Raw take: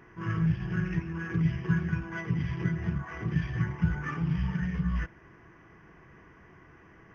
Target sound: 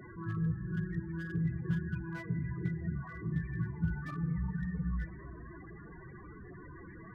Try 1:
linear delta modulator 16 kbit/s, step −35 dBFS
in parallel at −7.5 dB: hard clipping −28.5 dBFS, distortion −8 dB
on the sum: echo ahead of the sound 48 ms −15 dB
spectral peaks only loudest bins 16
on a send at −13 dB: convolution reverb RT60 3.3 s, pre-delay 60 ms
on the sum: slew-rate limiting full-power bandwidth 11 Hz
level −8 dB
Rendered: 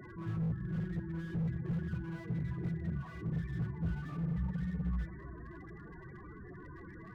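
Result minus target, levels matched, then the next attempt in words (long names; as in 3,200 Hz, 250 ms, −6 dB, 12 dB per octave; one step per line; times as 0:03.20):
slew-rate limiting: distortion +17 dB
linear delta modulator 16 kbit/s, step −35 dBFS
in parallel at −7.5 dB: hard clipping −28.5 dBFS, distortion −8 dB
on the sum: echo ahead of the sound 48 ms −15 dB
spectral peaks only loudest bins 16
on a send at −13 dB: convolution reverb RT60 3.3 s, pre-delay 60 ms
on the sum: slew-rate limiting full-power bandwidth 29 Hz
level −8 dB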